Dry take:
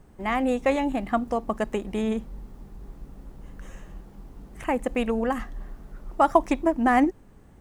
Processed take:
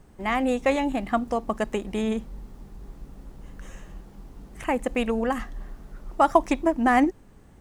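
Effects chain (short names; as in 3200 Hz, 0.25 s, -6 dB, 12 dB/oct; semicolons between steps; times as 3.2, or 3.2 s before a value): bell 5300 Hz +3.5 dB 2.5 oct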